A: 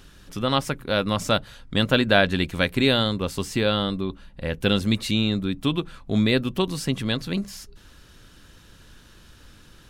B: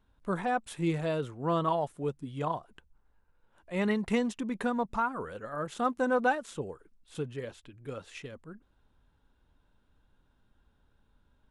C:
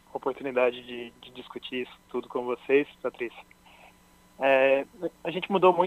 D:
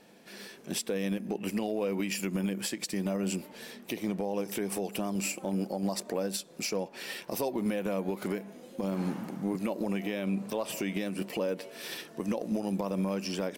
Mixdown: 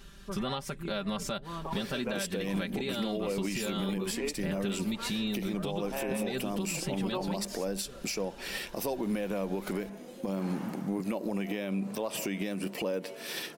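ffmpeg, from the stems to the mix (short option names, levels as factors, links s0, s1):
-filter_complex "[0:a]volume=0.596[s0];[1:a]volume=0.237[s1];[2:a]adelay=1500,volume=0.299[s2];[3:a]adelay=1450,volume=1.33[s3];[s0][s1]amix=inputs=2:normalize=0,aecho=1:1:5.1:0.82,acompressor=threshold=0.0398:ratio=5,volume=1[s4];[s2][s3][s4]amix=inputs=3:normalize=0,alimiter=limit=0.0668:level=0:latency=1:release=110"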